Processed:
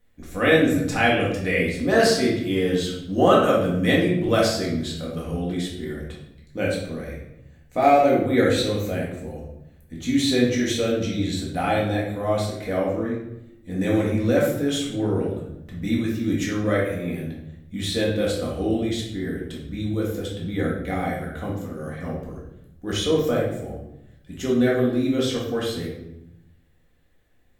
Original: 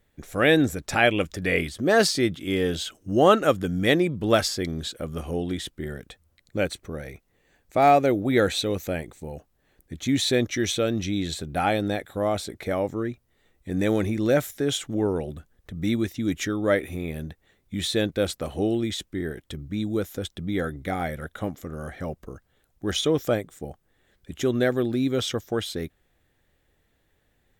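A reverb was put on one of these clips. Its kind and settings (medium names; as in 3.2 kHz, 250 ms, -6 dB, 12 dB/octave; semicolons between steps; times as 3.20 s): simulated room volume 250 m³, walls mixed, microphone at 1.9 m; trim -5 dB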